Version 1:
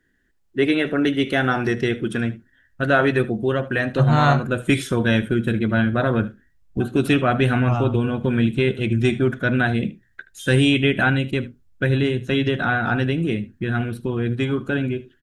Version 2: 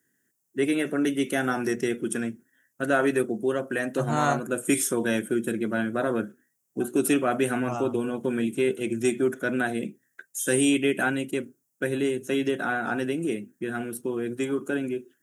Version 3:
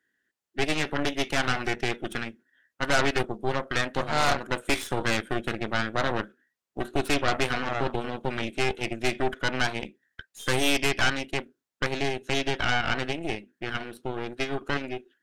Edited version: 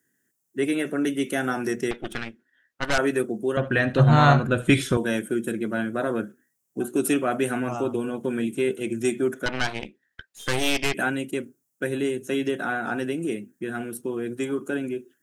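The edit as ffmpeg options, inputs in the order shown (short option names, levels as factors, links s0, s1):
-filter_complex "[2:a]asplit=2[s0][s1];[1:a]asplit=4[s2][s3][s4][s5];[s2]atrim=end=1.912[s6];[s0]atrim=start=1.908:end=2.982[s7];[s3]atrim=start=2.978:end=3.572[s8];[0:a]atrim=start=3.568:end=4.972[s9];[s4]atrim=start=4.968:end=9.462[s10];[s1]atrim=start=9.458:end=10.942[s11];[s5]atrim=start=10.938[s12];[s6][s7]acrossfade=d=0.004:c1=hsin:c2=hsin[s13];[s13][s8]acrossfade=d=0.004:c1=hsin:c2=hsin[s14];[s14][s9]acrossfade=d=0.004:c1=hsin:c2=hsin[s15];[s15][s10]acrossfade=d=0.004:c1=hsin:c2=hsin[s16];[s16][s11]acrossfade=d=0.004:c1=hsin:c2=hsin[s17];[s17][s12]acrossfade=d=0.004:c1=hsin:c2=hsin"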